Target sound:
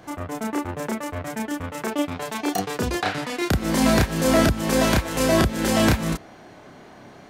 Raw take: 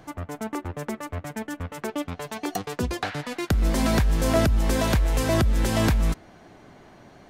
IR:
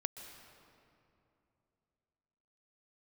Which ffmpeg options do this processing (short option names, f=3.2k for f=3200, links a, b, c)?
-filter_complex "[0:a]lowshelf=f=83:g=-10,asplit=2[a][b];[1:a]atrim=start_sample=2205,atrim=end_sample=3087,adelay=31[c];[b][c]afir=irnorm=-1:irlink=0,volume=0.5dB[d];[a][d]amix=inputs=2:normalize=0,volume=2.5dB"